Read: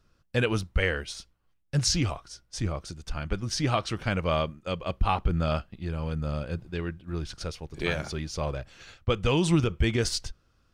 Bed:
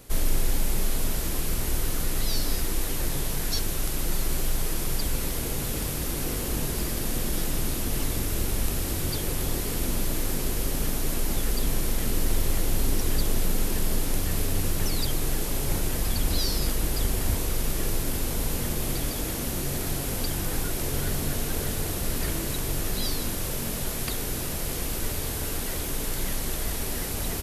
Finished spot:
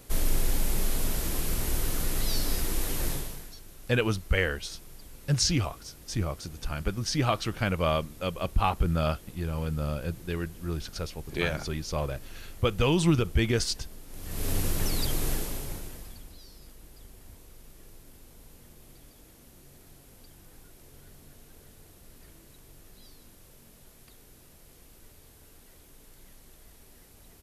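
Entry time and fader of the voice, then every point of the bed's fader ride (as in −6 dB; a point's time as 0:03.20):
3.55 s, 0.0 dB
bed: 0:03.11 −2 dB
0:03.57 −21 dB
0:14.07 −21 dB
0:14.49 −2 dB
0:15.32 −2 dB
0:16.37 −24.5 dB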